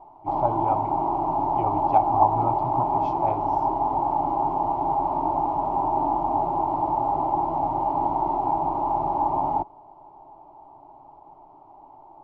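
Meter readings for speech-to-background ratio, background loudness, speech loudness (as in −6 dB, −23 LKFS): −2.5 dB, −24.5 LKFS, −27.0 LKFS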